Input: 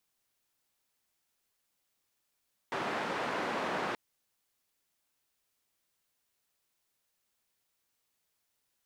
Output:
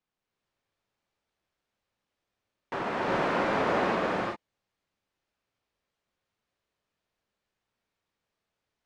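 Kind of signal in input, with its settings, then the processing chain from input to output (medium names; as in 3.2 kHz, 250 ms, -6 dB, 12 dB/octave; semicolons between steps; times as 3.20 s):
noise band 220–1300 Hz, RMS -34.5 dBFS 1.23 s
in parallel at -3 dB: bit crusher 6-bit; on the sum: tape spacing loss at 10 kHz 24 dB; gated-style reverb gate 420 ms rising, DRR -3.5 dB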